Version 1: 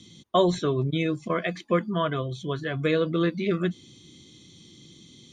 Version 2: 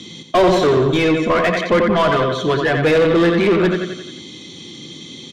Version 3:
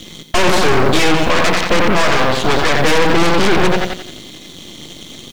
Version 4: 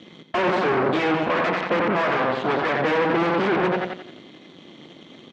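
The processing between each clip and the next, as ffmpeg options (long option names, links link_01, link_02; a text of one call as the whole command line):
ffmpeg -i in.wav -filter_complex "[0:a]aecho=1:1:88|176|264|352|440|528:0.398|0.199|0.0995|0.0498|0.0249|0.0124,asplit=2[link_01][link_02];[link_02]highpass=frequency=720:poles=1,volume=26dB,asoftclip=type=tanh:threshold=-9dB[link_03];[link_01][link_03]amix=inputs=2:normalize=0,lowpass=frequency=1500:poles=1,volume=-6dB,equalizer=frequency=1200:width_type=o:width=0.39:gain=-3,volume=4dB" out.wav
ffmpeg -i in.wav -filter_complex "[0:a]acrossover=split=320|3000[link_01][link_02][link_03];[link_02]acompressor=threshold=-22dB:ratio=1.5[link_04];[link_01][link_04][link_03]amix=inputs=3:normalize=0,acrusher=bits=9:dc=4:mix=0:aa=0.000001,aeval=exprs='0.531*(cos(1*acos(clip(val(0)/0.531,-1,1)))-cos(1*PI/2))+0.237*(cos(8*acos(clip(val(0)/0.531,-1,1)))-cos(8*PI/2))':channel_layout=same,volume=-1dB" out.wav
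ffmpeg -i in.wav -af "highpass=180,lowpass=2100,volume=-6dB" out.wav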